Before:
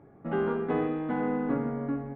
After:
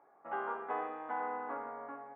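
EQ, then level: ladder band-pass 1.1 kHz, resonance 35%; +8.5 dB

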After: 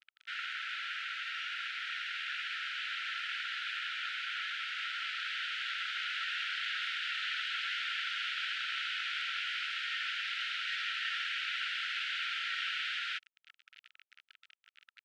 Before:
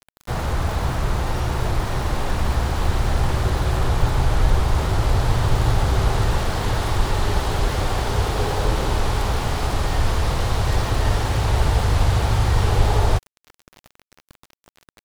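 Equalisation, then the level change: brick-wall FIR high-pass 1.3 kHz; resonant low-pass 2.9 kHz, resonance Q 2.4; -6.5 dB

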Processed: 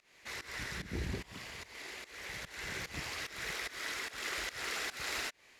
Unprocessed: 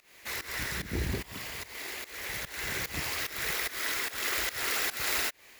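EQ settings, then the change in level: low-pass 7.9 kHz 12 dB/octave; peaking EQ 180 Hz +2.5 dB 0.35 oct; -6.0 dB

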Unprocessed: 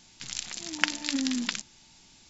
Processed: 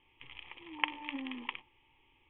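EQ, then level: dynamic bell 880 Hz, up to +7 dB, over -53 dBFS, Q 1.8; rippled Chebyshev low-pass 3.3 kHz, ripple 3 dB; static phaser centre 1 kHz, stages 8; -3.5 dB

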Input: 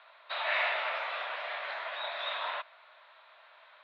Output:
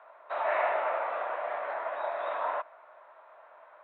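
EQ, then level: low-pass 1 kHz 12 dB/octave; distance through air 160 m; bass shelf 300 Hz +6.5 dB; +8.5 dB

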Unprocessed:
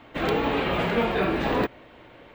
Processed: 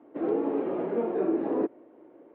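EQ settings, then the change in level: ladder band-pass 380 Hz, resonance 50%; +7.0 dB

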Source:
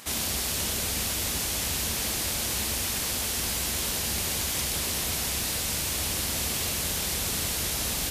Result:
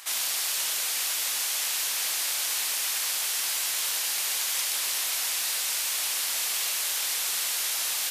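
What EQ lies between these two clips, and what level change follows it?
high-pass 1 kHz 12 dB/octave; +1.5 dB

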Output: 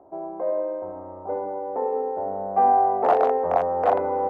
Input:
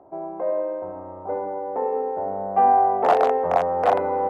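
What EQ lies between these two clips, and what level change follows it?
peaking EQ 140 Hz -6.5 dB 0.71 oct; treble shelf 2.2 kHz -11.5 dB; 0.0 dB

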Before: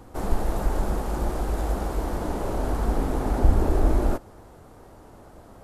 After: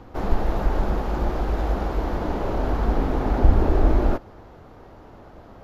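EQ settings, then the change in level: boxcar filter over 5 samples; peaking EQ 2.7 kHz +2.5 dB 1.7 oct; +2.5 dB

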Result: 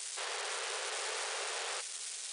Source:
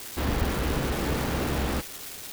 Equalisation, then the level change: brick-wall FIR band-pass 370–10000 Hz; tilt EQ +3.5 dB/octave; -8.0 dB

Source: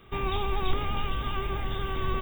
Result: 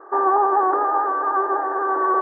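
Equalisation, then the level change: brick-wall FIR high-pass 280 Hz; Chebyshev low-pass 1.8 kHz, order 8; peaking EQ 840 Hz +12.5 dB 1.6 oct; +7.0 dB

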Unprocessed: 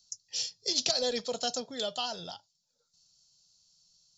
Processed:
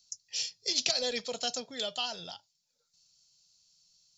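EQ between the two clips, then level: peaking EQ 2.3 kHz +9 dB 0.77 oct; treble shelf 5 kHz +4 dB; -3.5 dB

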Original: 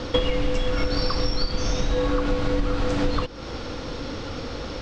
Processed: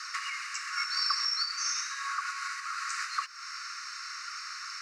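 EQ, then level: Chebyshev high-pass 1.1 kHz, order 8; tilt EQ +3.5 dB/octave; static phaser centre 1.4 kHz, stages 4; 0.0 dB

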